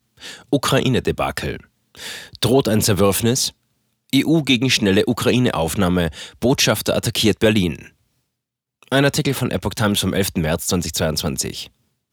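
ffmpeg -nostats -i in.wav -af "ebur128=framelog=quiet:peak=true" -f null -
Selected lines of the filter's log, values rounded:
Integrated loudness:
  I:         -18.4 LUFS
  Threshold: -29.2 LUFS
Loudness range:
  LRA:         3.0 LU
  Threshold: -38.9 LUFS
  LRA low:   -20.5 LUFS
  LRA high:  -17.4 LUFS
True peak:
  Peak:       -2.9 dBFS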